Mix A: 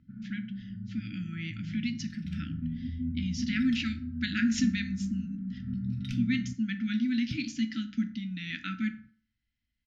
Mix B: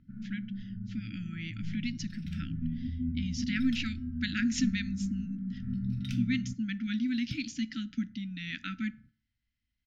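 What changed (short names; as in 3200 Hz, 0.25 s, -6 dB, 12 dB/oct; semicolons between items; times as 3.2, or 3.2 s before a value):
speech: send -11.0 dB; first sound: remove HPF 43 Hz; master: add high shelf 11000 Hz +11 dB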